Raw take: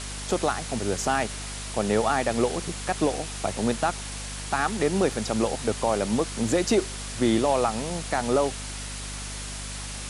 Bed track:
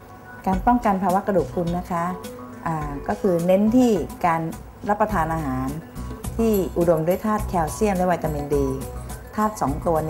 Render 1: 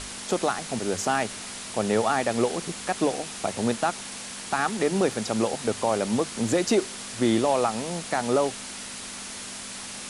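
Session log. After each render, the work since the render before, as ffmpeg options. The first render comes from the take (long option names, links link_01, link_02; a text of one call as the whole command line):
ffmpeg -i in.wav -af "bandreject=frequency=50:width_type=h:width=6,bandreject=frequency=100:width_type=h:width=6,bandreject=frequency=150:width_type=h:width=6" out.wav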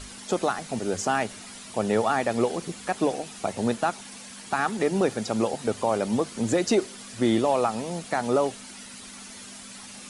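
ffmpeg -i in.wav -af "afftdn=noise_reduction=9:noise_floor=-38" out.wav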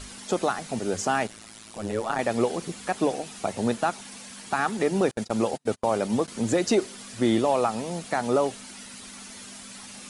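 ffmpeg -i in.wav -filter_complex "[0:a]asettb=1/sr,asplit=3[link_01][link_02][link_03];[link_01]atrim=end=1.274[link_04];[link_02]atrim=start=1.27:end=2.19,asetpts=PTS-STARTPTS,afade=type=in:duration=0.004:curve=qsin,afade=type=out:start_time=0.916:duration=0.004:curve=qsin,tremolo=f=110:d=0.919[link_05];[link_03]atrim=start=2.186[link_06];[link_04][link_05]acrossfade=duration=0.004:curve1=hsin:curve2=qsin[link_07];[link_07][link_06]acrossfade=duration=0.004:curve1=qsin:curve2=hsin,asettb=1/sr,asplit=3[link_08][link_09][link_10];[link_08]atrim=end=5.114[link_11];[link_09]atrim=start=5.11:end=6.28,asetpts=PTS-STARTPTS,afade=type=in:duration=0.004:curve=qsin,afade=type=out:start_time=1.166:duration=0.004:curve=qsin,agate=range=-39dB:threshold=-32dB:ratio=16:release=100:detection=peak[link_12];[link_10]atrim=start=6.276[link_13];[link_11][link_12]acrossfade=duration=0.004:curve1=hsin:curve2=qsin[link_14];[link_14][link_13]acrossfade=duration=0.004:curve1=qsin:curve2=hsin" out.wav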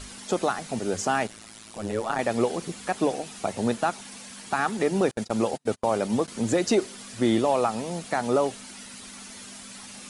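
ffmpeg -i in.wav -af anull out.wav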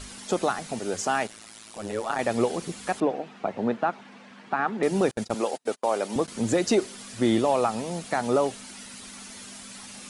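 ffmpeg -i in.wav -filter_complex "[0:a]asettb=1/sr,asplit=3[link_01][link_02][link_03];[link_01]atrim=end=0.734[link_04];[link_02]atrim=start=0.73:end=2.21,asetpts=PTS-STARTPTS,afade=type=in:duration=0.004:curve=qsin,afade=type=out:start_time=1.476:duration=0.004:curve=qsin,lowshelf=frequency=230:gain=-7.5[link_05];[link_03]atrim=start=2.206[link_06];[link_04][link_05]acrossfade=duration=0.004:curve1=hsin:curve2=qsin[link_07];[link_07][link_06]acrossfade=duration=0.004:curve1=qsin:curve2=hsin,asettb=1/sr,asplit=3[link_08][link_09][link_10];[link_08]atrim=end=3.004[link_11];[link_09]atrim=start=3:end=4.83,asetpts=PTS-STARTPTS,afade=type=in:duration=0.004:curve=qsin,afade=type=out:start_time=1.826:duration=0.004:curve=qsin,highpass=160,lowpass=2100[link_12];[link_10]atrim=start=4.826[link_13];[link_11][link_12]acrossfade=duration=0.004:curve1=hsin:curve2=qsin[link_14];[link_14][link_13]acrossfade=duration=0.004:curve1=qsin:curve2=hsin,asettb=1/sr,asplit=3[link_15][link_16][link_17];[link_15]atrim=end=5.344[link_18];[link_16]atrim=start=5.34:end=6.16,asetpts=PTS-STARTPTS,afade=type=in:duration=0.004:curve=qsin,afade=type=out:start_time=0.816:duration=0.004:curve=qsin,highpass=340[link_19];[link_17]atrim=start=6.156[link_20];[link_18][link_19]acrossfade=duration=0.004:curve1=hsin:curve2=qsin[link_21];[link_21][link_20]acrossfade=duration=0.004:curve1=qsin:curve2=hsin" out.wav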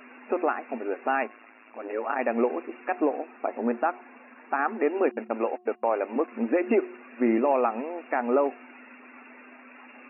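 ffmpeg -i in.wav -af "afftfilt=real='re*between(b*sr/4096,220,2800)':imag='im*between(b*sr/4096,220,2800)':win_size=4096:overlap=0.75,bandreject=frequency=360.5:width_type=h:width=4,bandreject=frequency=721:width_type=h:width=4,bandreject=frequency=1081.5:width_type=h:width=4" out.wav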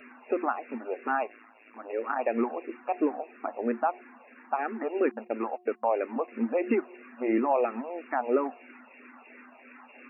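ffmpeg -i in.wav -filter_complex "[0:a]asplit=2[link_01][link_02];[link_02]afreqshift=-3[link_03];[link_01][link_03]amix=inputs=2:normalize=1" out.wav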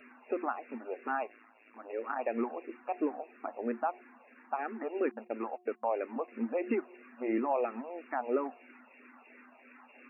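ffmpeg -i in.wav -af "volume=-5.5dB" out.wav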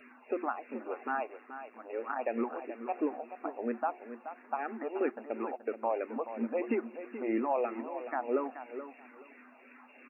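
ffmpeg -i in.wav -af "aecho=1:1:428|856|1284:0.282|0.0592|0.0124" out.wav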